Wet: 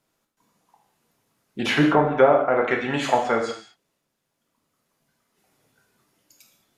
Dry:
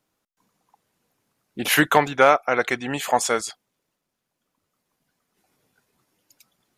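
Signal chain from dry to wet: treble ducked by the level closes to 770 Hz, closed at -15 dBFS; non-linear reverb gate 0.25 s falling, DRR 0.5 dB

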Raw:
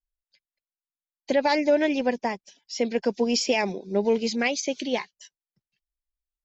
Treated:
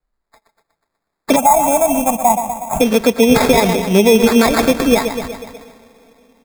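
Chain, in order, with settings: vibrato 4 Hz 90 cents; comb 4.4 ms, depth 57%; on a send: feedback echo 0.122 s, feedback 56%, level -11.5 dB; on the sum: AGC gain up to 5.5 dB; two-slope reverb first 0.25 s, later 3.8 s, from -18 dB, DRR 17 dB; in parallel at 0 dB: compressor, threshold -26 dBFS, peak gain reduction 15.5 dB; on the sum: sample-and-hold 15×; 1.36–2.81 EQ curve 190 Hz 0 dB, 440 Hz -19 dB, 750 Hz +9 dB, 1800 Hz -20 dB, 2700 Hz -5 dB, 4500 Hz -28 dB, 6800 Hz +4 dB; maximiser +6.5 dB; gain -1 dB

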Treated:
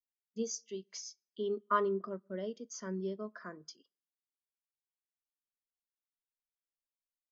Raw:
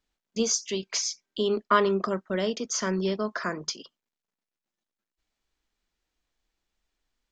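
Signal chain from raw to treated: notch 2500 Hz, Q 13; on a send at -20 dB: reverb, pre-delay 3 ms; on the sum: spectral expander 1.5:1; gain -8.5 dB

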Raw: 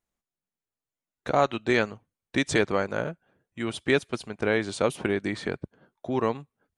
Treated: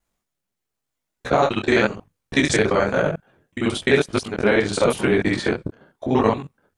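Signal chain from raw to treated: local time reversal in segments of 43 ms; maximiser +13 dB; detuned doubles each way 33 cents

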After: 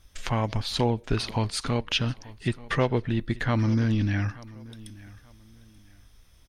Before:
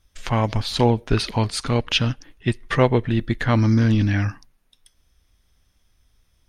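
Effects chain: compressor 1.5:1, threshold -50 dBFS, peak gain reduction 14 dB; feedback echo 0.883 s, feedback 29%, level -20.5 dB; gain +6 dB

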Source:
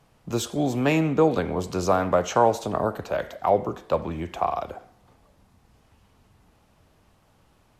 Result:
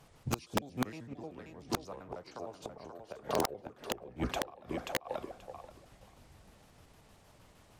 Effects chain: trilling pitch shifter -5.5 st, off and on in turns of 77 ms; bell 11000 Hz +4 dB 2.8 oct; on a send: thinning echo 0.532 s, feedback 16%, high-pass 200 Hz, level -5.5 dB; on the sum: flipped gate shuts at -17 dBFS, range -25 dB; wrapped overs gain 20 dB

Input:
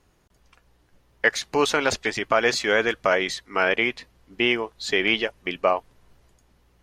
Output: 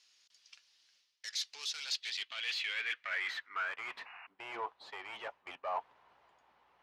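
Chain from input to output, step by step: bell 3000 Hz +12 dB 2.2 oct; reverse; compressor 10:1, threshold -24 dBFS, peak gain reduction 18.5 dB; reverse; tube stage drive 30 dB, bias 0.4; band-pass sweep 5200 Hz -> 890 Hz, 1.71–4.16; painted sound noise, 4.05–4.27, 660–2900 Hz -55 dBFS; gain +3 dB

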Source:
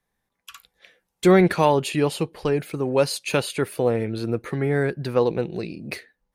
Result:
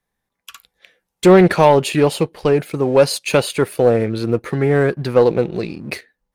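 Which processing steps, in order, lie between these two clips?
dynamic EQ 650 Hz, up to +4 dB, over -31 dBFS, Q 1.1; sample leveller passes 1; Doppler distortion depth 0.15 ms; gain +2 dB

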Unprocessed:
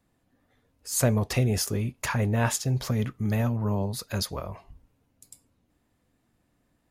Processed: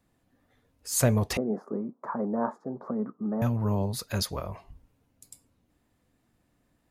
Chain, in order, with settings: 1.37–3.42 elliptic band-pass 200–1200 Hz, stop band 40 dB

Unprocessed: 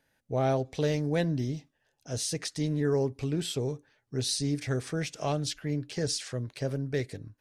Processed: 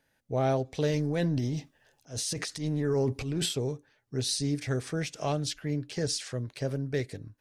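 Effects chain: 0.9–3.53 transient shaper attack -10 dB, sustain +9 dB

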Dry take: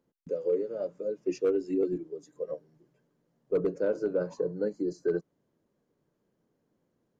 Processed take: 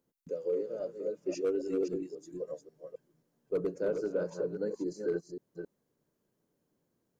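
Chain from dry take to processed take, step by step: reverse delay 0.269 s, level -6 dB; high shelf 5900 Hz +11 dB; gain -4.5 dB

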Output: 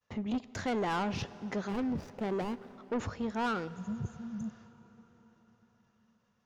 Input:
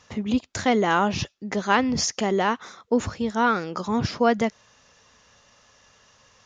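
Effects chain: 1.68–2.78 median filter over 41 samples; 3.7–4.64 spectral repair 220–6100 Hz after; expander -46 dBFS; high shelf 4200 Hz -10.5 dB; soft clip -22.5 dBFS, distortion -10 dB; plate-style reverb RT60 5 s, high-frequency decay 0.85×, DRR 15.5 dB; gain -5.5 dB

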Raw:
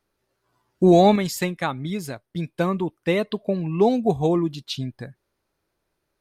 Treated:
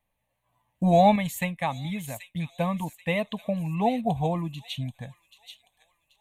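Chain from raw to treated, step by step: fixed phaser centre 1400 Hz, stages 6; thin delay 0.783 s, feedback 37%, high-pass 3300 Hz, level -6.5 dB

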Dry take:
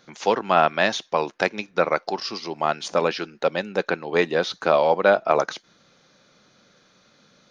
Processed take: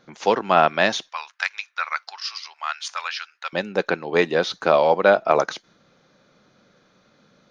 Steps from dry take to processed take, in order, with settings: 1.09–3.53 HPF 1200 Hz 24 dB/oct; mismatched tape noise reduction decoder only; gain +1.5 dB

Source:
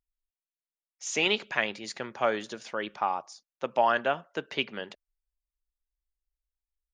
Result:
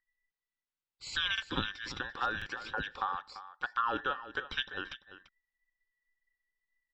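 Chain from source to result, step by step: band inversion scrambler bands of 2000 Hz; LPF 5000 Hz 24 dB/oct; compressor 2:1, threshold -34 dBFS, peak gain reduction 8.5 dB; Butterworth band-stop 650 Hz, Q 5.6; low shelf 65 Hz +8 dB; echo 0.341 s -14 dB; stuck buffer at 1.33/2.37, samples 2048, times 1

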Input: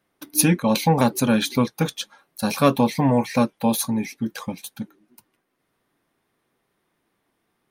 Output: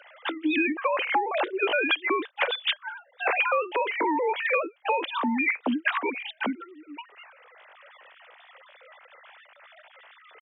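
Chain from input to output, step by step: sine-wave speech; HPF 300 Hz 24 dB/oct; compressor 5:1, threshold -26 dBFS, peak gain reduction 14.5 dB; tilt shelf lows -4.5 dB, about 1300 Hz; tempo 0.74×; three-band squash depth 70%; gain +5.5 dB

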